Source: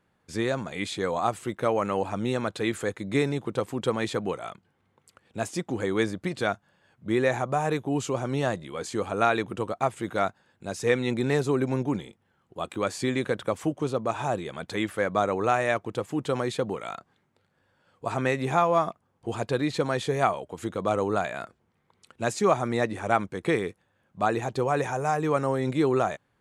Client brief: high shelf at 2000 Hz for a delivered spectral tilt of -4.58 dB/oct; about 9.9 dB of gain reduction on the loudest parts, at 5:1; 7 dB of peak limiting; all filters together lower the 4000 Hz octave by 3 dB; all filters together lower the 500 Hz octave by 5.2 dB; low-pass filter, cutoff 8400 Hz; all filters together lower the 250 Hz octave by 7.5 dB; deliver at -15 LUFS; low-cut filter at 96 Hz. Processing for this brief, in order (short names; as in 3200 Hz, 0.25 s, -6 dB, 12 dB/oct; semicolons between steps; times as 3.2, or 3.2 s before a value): HPF 96 Hz; LPF 8400 Hz; bell 250 Hz -8.5 dB; bell 500 Hz -4.5 dB; high shelf 2000 Hz +4.5 dB; bell 4000 Hz -7.5 dB; compressor 5:1, threshold -30 dBFS; gain +22.5 dB; limiter -1 dBFS